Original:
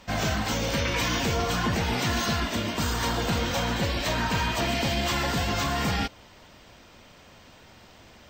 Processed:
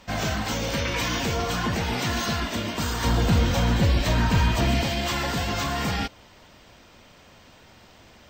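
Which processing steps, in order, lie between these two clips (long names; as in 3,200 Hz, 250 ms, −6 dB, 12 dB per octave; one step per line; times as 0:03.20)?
0:03.04–0:04.83: low-shelf EQ 220 Hz +11.5 dB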